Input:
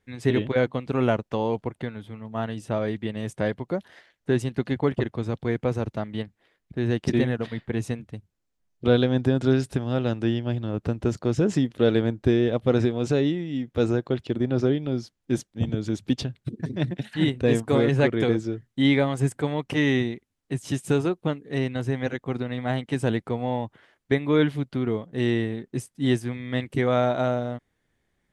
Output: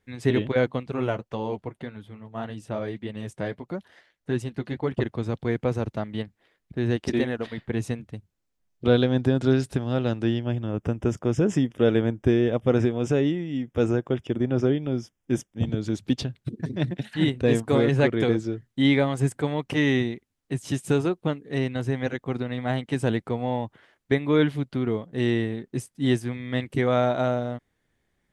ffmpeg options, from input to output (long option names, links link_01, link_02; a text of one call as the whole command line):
ffmpeg -i in.wav -filter_complex "[0:a]asettb=1/sr,asplit=3[link_01][link_02][link_03];[link_01]atrim=end=0.834[link_04];[link_02]atrim=start=0.83:end=4.97,asetpts=PTS-STARTPTS,afade=type=in:duration=0.004:curve=qsin,afade=type=out:start_time=4.136:duration=0.004:curve=qsin,flanger=delay=0.7:depth=6.1:regen=-51:speed=1.7:shape=sinusoidal[link_05];[link_03]atrim=start=4.966[link_06];[link_04][link_05]acrossfade=duration=0.004:curve1=hsin:curve2=qsin[link_07];[link_07][link_06]acrossfade=duration=0.004:curve1=qsin:curve2=hsin,asettb=1/sr,asplit=3[link_08][link_09][link_10];[link_08]atrim=end=6.964[link_11];[link_09]atrim=start=6.96:end=7.58,asetpts=PTS-STARTPTS,afade=type=in:duration=0.004:curve=qsin,afade=type=out:start_time=0.616:duration=0.004:curve=qsin,equalizer=frequency=140:width_type=o:width=0.85:gain=-10[link_12];[link_10]atrim=start=7.576[link_13];[link_11][link_12]acrossfade=duration=0.004:curve1=hsin:curve2=qsin[link_14];[link_14][link_13]acrossfade=duration=0.004:curve1=qsin:curve2=hsin,asettb=1/sr,asplit=3[link_15][link_16][link_17];[link_15]atrim=end=10.414[link_18];[link_16]atrim=start=10.41:end=15.6,asetpts=PTS-STARTPTS,afade=type=in:duration=0.004:curve=qsin,afade=type=out:start_time=5.186:duration=0.004:curve=qsin,asuperstop=centerf=4200:order=4:qfactor=2.7[link_19];[link_17]atrim=start=15.596[link_20];[link_18][link_19]acrossfade=duration=0.004:curve1=hsin:curve2=qsin[link_21];[link_21][link_20]acrossfade=duration=0.004:curve1=qsin:curve2=hsin" out.wav